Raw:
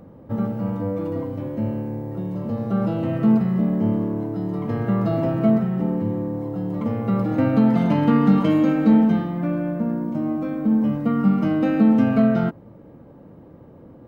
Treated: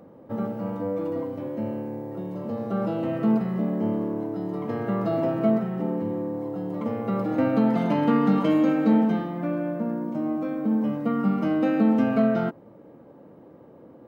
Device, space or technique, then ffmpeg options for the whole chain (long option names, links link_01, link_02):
filter by subtraction: -filter_complex "[0:a]asplit=2[link_01][link_02];[link_02]lowpass=430,volume=-1[link_03];[link_01][link_03]amix=inputs=2:normalize=0,volume=-2.5dB"